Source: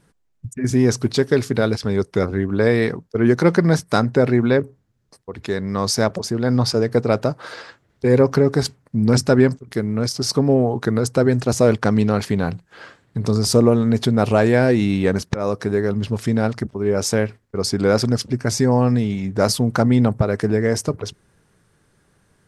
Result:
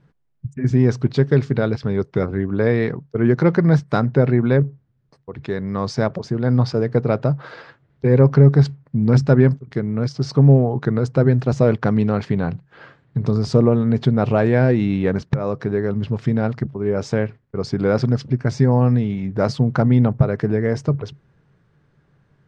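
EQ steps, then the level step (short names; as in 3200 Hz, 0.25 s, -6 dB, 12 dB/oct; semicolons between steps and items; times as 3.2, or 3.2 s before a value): synth low-pass 7700 Hz, resonance Q 3.2; air absorption 310 m; bell 140 Hz +13.5 dB 0.23 oct; -1.0 dB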